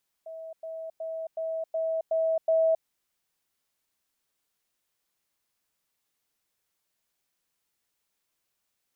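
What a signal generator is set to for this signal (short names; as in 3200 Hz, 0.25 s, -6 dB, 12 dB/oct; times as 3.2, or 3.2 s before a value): level ladder 648 Hz -37.5 dBFS, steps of 3 dB, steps 7, 0.27 s 0.10 s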